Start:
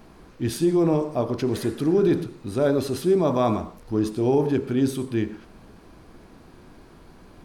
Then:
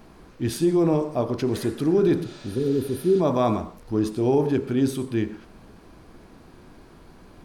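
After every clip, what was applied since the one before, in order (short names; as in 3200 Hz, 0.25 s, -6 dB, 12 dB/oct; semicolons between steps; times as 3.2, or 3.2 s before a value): spectral repair 2.28–3.18, 530–8700 Hz before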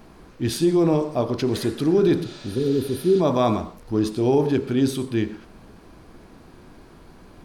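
dynamic EQ 4000 Hz, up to +5 dB, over -50 dBFS, Q 1.2; gain +1.5 dB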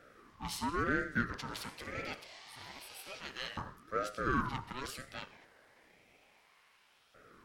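added harmonics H 6 -23 dB, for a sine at -8.5 dBFS; LFO high-pass saw up 0.28 Hz 420–2300 Hz; ring modulator with a swept carrier 730 Hz, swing 30%, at 0.98 Hz; gain -9 dB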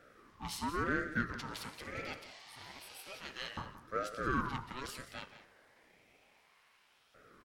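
echo 0.176 s -13.5 dB; gain -1.5 dB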